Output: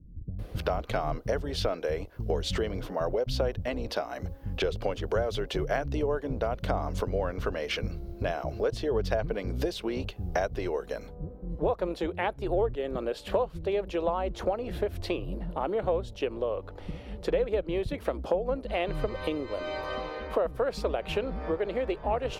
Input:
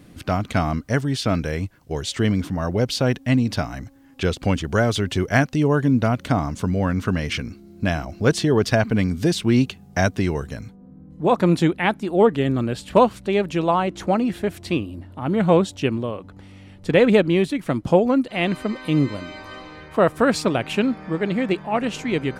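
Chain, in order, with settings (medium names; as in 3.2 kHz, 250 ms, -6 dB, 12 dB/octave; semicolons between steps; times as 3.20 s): octave divider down 2 oct, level -5 dB; graphic EQ 125/250/500/2000/8000 Hz -6/-9/+9/-4/-11 dB; compression 6:1, threshold -29 dBFS, peak gain reduction 21.5 dB; bands offset in time lows, highs 390 ms, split 210 Hz; trim +3 dB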